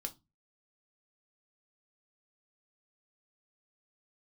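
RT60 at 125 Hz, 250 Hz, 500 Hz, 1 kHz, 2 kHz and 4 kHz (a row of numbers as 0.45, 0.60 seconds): 0.45, 0.35, 0.25, 0.20, 0.15, 0.20 seconds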